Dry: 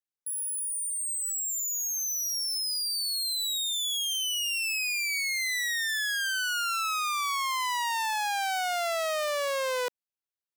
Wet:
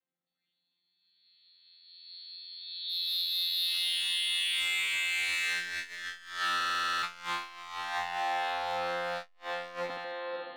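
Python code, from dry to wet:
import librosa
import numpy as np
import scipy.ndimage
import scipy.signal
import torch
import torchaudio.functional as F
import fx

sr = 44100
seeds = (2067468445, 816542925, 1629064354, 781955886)

p1 = fx.chord_vocoder(x, sr, chord='bare fifth', root=53)
p2 = fx.over_compress(p1, sr, threshold_db=-33.0, ratio=-0.5)
p3 = p1 + F.gain(torch.from_numpy(p2), 2.0).numpy()
p4 = fx.brickwall_lowpass(p3, sr, high_hz=4500.0)
p5 = p4 + fx.echo_diffused(p4, sr, ms=535, feedback_pct=41, wet_db=-6.5, dry=0)
p6 = np.clip(p5, -10.0 ** (-23.5 / 20.0), 10.0 ** (-23.5 / 20.0))
p7 = fx.highpass(p6, sr, hz=620.0, slope=24, at=(2.56, 3.67))
p8 = fx.echo_feedback(p7, sr, ms=75, feedback_pct=51, wet_db=-7)
p9 = fx.buffer_glitch(p8, sr, at_s=(6.56,), block=2048, repeats=9)
p10 = fx.transformer_sat(p9, sr, knee_hz=970.0)
y = F.gain(torch.from_numpy(p10), -4.0).numpy()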